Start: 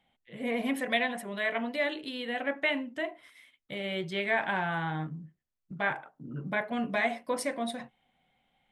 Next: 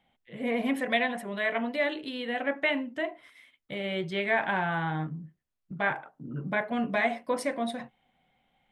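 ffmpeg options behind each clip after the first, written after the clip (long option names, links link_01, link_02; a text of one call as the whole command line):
ffmpeg -i in.wav -af "highshelf=frequency=4100:gain=-6.5,volume=2.5dB" out.wav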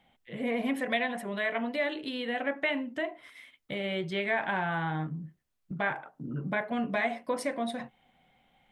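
ffmpeg -i in.wav -af "acompressor=threshold=-43dB:ratio=1.5,volume=4.5dB" out.wav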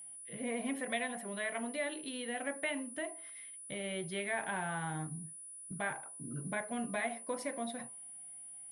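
ffmpeg -i in.wav -af "bandreject=frequency=109.9:width_type=h:width=4,bandreject=frequency=219.8:width_type=h:width=4,bandreject=frequency=329.7:width_type=h:width=4,bandreject=frequency=439.6:width_type=h:width=4,bandreject=frequency=549.5:width_type=h:width=4,bandreject=frequency=659.4:width_type=h:width=4,bandreject=frequency=769.3:width_type=h:width=4,bandreject=frequency=879.2:width_type=h:width=4,bandreject=frequency=989.1:width_type=h:width=4,bandreject=frequency=1099:width_type=h:width=4,bandreject=frequency=1208.9:width_type=h:width=4,aeval=exprs='val(0)+0.01*sin(2*PI*9800*n/s)':channel_layout=same,volume=-7dB" out.wav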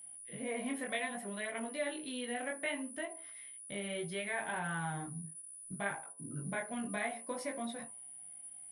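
ffmpeg -i in.wav -af "flanger=delay=18:depth=6.7:speed=0.65,volume=2.5dB" out.wav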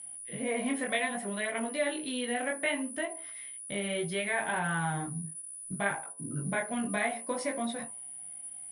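ffmpeg -i in.wav -af "volume=7dB" -ar 24000 -c:a libmp3lame -b:a 80k out.mp3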